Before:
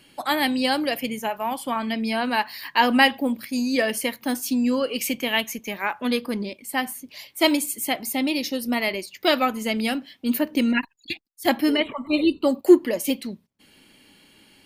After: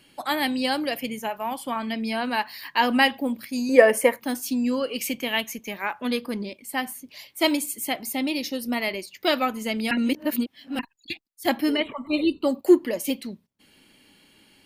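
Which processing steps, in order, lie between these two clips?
3.69–4.2 graphic EQ 500/1000/2000/4000/8000 Hz +12/+8/+7/-12/+6 dB; 9.91–10.79 reverse; gain -2.5 dB

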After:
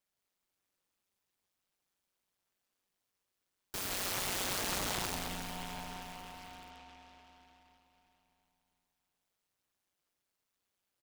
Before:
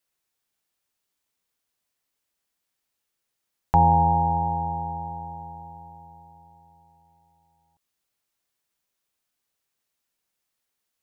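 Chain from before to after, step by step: rattling part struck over -34 dBFS, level -21 dBFS; in parallel at -0.5 dB: compressor, threshold -34 dBFS, peak gain reduction 19 dB; on the sum: dynamic EQ 1100 Hz, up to +6 dB, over -33 dBFS, Q 1.3; wrapped overs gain 21 dB; reverse bouncing-ball echo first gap 0.17 s, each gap 1.3×, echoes 5; ring modulator 94 Hz; noise-modulated delay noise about 1800 Hz, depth 0.14 ms; gain -8.5 dB

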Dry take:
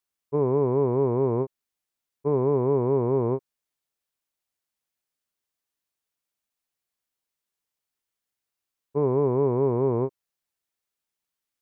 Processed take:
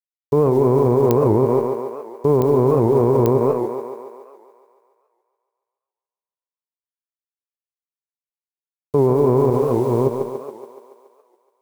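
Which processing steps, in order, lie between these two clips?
negative-ratio compressor -28 dBFS, ratio -1; 9.5–10.07 resonator 290 Hz, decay 1.1 s, mix 60%; bit-crush 10-bit; thinning echo 0.141 s, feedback 68%, high-pass 250 Hz, level -5.5 dB; reverb RT60 0.35 s, pre-delay 85 ms, DRR 13 dB; pops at 1.11/2.42/3.26, -14 dBFS; maximiser +21.5 dB; record warp 78 rpm, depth 160 cents; gain -5.5 dB

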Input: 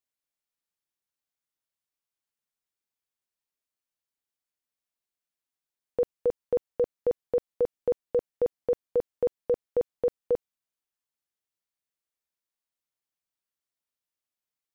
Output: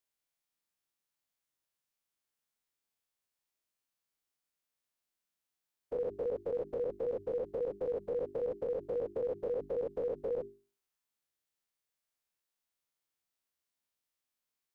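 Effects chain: spectral dilation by 0.12 s; notches 50/100/150/200/250/300/350/400 Hz; limiter -25.5 dBFS, peak gain reduction 11 dB; gain -3 dB

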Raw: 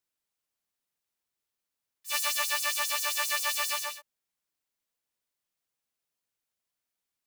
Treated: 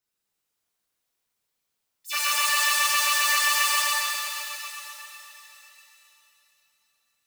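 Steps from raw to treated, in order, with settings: formant sharpening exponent 2; shimmer reverb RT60 3.4 s, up +7 st, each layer -8 dB, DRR -6 dB

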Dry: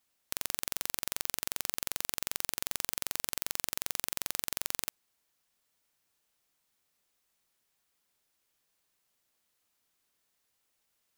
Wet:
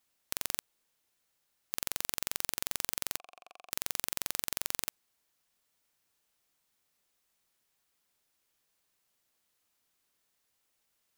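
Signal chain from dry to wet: 0.61–1.7 room tone; 3.17–3.71 vowel filter a

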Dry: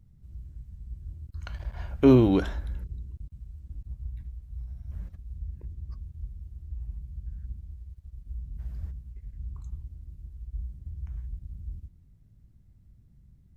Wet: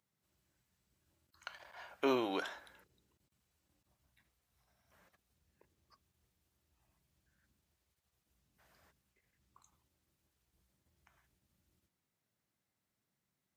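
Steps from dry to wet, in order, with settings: HPF 740 Hz 12 dB/oct; gain -2 dB

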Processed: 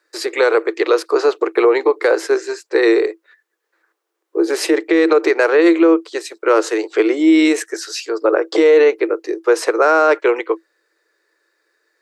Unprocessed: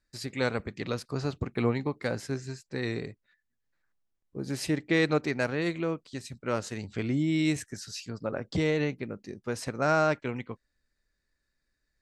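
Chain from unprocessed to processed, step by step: rippled Chebyshev high-pass 320 Hz, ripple 6 dB; tilt shelf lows +4.5 dB, about 820 Hz; maximiser +26 dB; gain -3 dB

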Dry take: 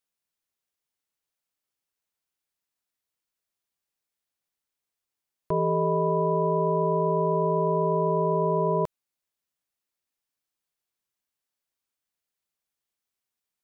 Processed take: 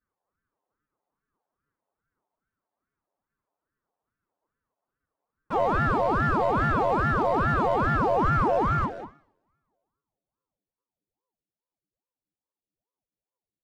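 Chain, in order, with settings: low-pass sweep 780 Hz -> 210 Hz, 7.89–11.33; overdrive pedal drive 33 dB, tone 1200 Hz, clips at -12 dBFS; metallic resonator 72 Hz, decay 0.55 s, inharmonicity 0.03; loudspeakers at several distances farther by 51 m -11 dB, 64 m -10 dB; reverb, pre-delay 3 ms, DRR 10.5 dB; ring modulator with a swept carrier 410 Hz, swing 90%, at 2.4 Hz

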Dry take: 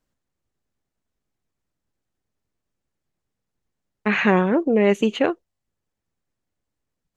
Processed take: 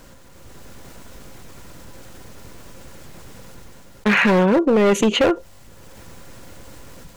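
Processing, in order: AGC gain up to 16 dB; small resonant body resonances 530/990/1400 Hz, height 9 dB, ringing for 95 ms; hard clip -12.5 dBFS, distortion -8 dB; fast leveller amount 50%

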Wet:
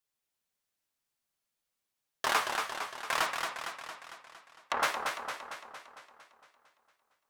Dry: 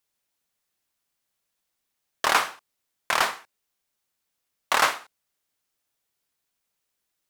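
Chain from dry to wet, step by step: flange 0.93 Hz, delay 6.1 ms, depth 7.2 ms, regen +41%; 3.26–4.83 treble ducked by the level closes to 1200 Hz, closed at -26 dBFS; warbling echo 0.228 s, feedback 59%, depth 112 cents, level -5 dB; gain -3.5 dB

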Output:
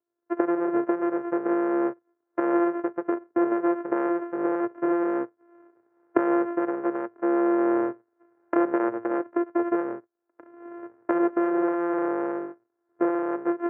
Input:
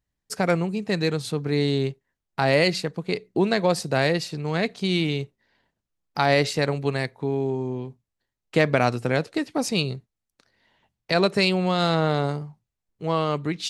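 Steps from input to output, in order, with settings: sample sorter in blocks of 128 samples; recorder AGC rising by 31 dB/s; elliptic band-pass 110–1600 Hz, stop band 40 dB; resonant low shelf 250 Hz -12.5 dB, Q 3; gain -6.5 dB

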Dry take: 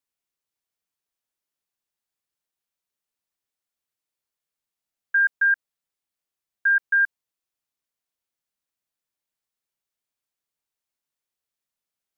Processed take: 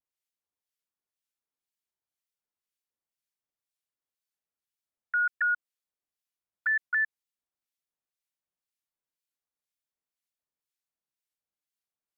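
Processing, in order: harmonic tremolo 2 Hz, crossover 1600 Hz; shaped vibrato square 3.6 Hz, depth 160 cents; gain -3.5 dB

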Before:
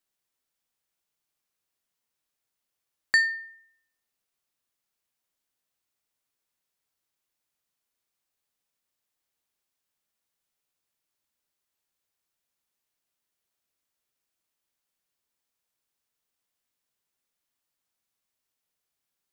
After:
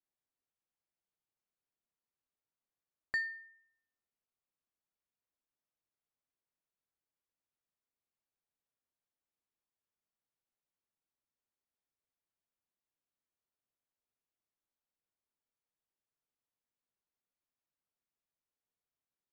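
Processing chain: LPF 1000 Hz 6 dB/oct; gain -6.5 dB

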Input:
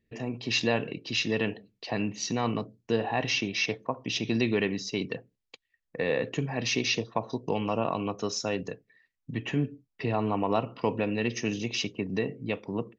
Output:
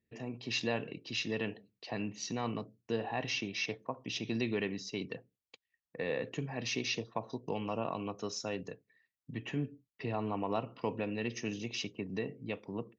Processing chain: HPF 57 Hz; gain -7.5 dB

